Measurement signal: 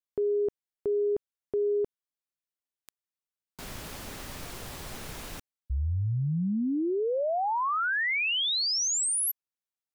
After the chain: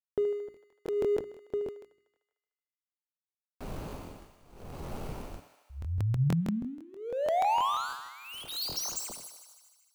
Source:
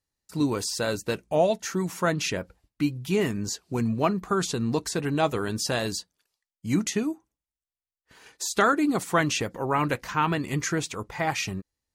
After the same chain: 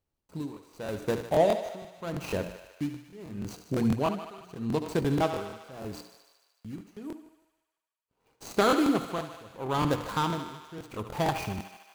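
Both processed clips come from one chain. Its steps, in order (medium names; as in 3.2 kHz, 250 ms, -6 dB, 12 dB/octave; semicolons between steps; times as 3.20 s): median filter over 25 samples; treble shelf 7.7 kHz +5.5 dB; hum notches 60/120/180/240/300/360 Hz; in parallel at -1 dB: compression, threshold -36 dBFS; on the sum: tremolo 0.8 Hz, depth 95%; on a send: thinning echo 75 ms, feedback 74%, high-pass 400 Hz, level -9 dB; on the sum: crackling interface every 0.16 s, samples 1024, repeat, from 0.52 s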